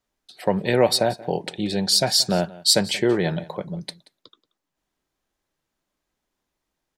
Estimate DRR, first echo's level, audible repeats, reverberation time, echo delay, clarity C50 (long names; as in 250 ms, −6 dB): no reverb audible, −20.5 dB, 1, no reverb audible, 180 ms, no reverb audible